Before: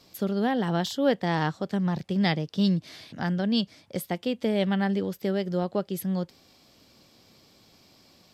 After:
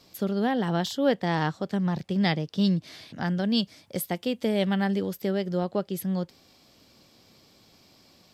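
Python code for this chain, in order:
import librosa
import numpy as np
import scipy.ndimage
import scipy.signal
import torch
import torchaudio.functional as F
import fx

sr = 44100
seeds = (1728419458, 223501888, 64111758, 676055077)

y = fx.high_shelf(x, sr, hz=7500.0, db=8.0, at=(3.37, 5.25))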